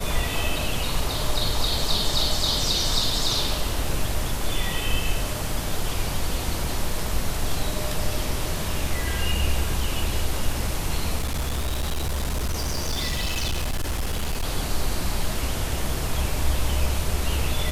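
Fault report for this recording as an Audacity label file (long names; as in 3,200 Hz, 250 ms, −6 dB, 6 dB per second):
11.180000	14.450000	clipping −21.5 dBFS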